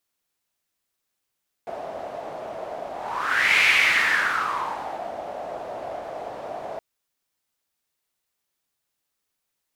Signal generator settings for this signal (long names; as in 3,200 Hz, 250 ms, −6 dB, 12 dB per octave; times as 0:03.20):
pass-by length 5.12 s, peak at 0:01.96, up 0.77 s, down 1.64 s, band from 660 Hz, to 2,300 Hz, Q 5.4, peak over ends 15.5 dB